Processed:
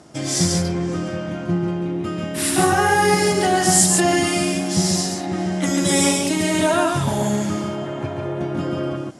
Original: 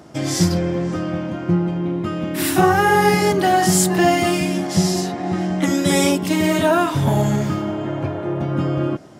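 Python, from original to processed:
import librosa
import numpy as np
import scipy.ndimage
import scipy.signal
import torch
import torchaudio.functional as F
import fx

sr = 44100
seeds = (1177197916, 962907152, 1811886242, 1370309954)

p1 = scipy.signal.sosfilt(scipy.signal.butter(8, 11000.0, 'lowpass', fs=sr, output='sos'), x)
p2 = fx.high_shelf(p1, sr, hz=5500.0, db=10.5)
p3 = p2 + fx.echo_single(p2, sr, ms=140, db=-3.5, dry=0)
y = p3 * librosa.db_to_amplitude(-3.5)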